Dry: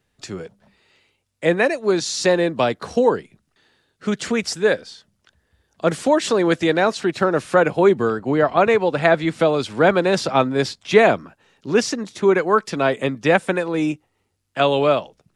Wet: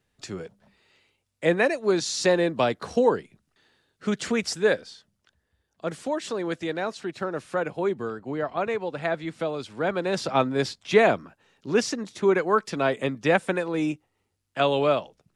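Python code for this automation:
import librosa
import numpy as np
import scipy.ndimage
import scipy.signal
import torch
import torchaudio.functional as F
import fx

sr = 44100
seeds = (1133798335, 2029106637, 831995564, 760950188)

y = fx.gain(x, sr, db=fx.line((4.73, -4.0), (5.85, -11.5), (9.84, -11.5), (10.36, -5.0)))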